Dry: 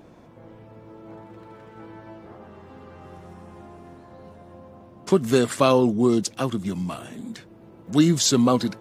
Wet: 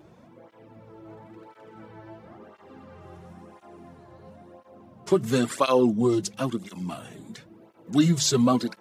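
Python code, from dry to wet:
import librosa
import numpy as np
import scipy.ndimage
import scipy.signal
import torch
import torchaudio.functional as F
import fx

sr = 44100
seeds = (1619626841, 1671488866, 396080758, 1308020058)

y = fx.hum_notches(x, sr, base_hz=50, count=4)
y = fx.flanger_cancel(y, sr, hz=0.97, depth_ms=4.5)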